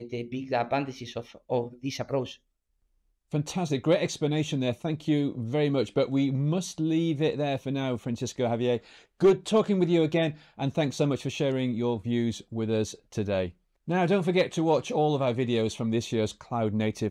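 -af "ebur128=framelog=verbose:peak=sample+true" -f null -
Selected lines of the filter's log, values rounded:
Integrated loudness:
  I:         -27.8 LUFS
  Threshold: -38.0 LUFS
Loudness range:
  LRA:         4.4 LU
  Threshold: -47.9 LUFS
  LRA low:   -30.7 LUFS
  LRA high:  -26.3 LUFS
Sample peak:
  Peak:      -10.9 dBFS
True peak:
  Peak:      -10.9 dBFS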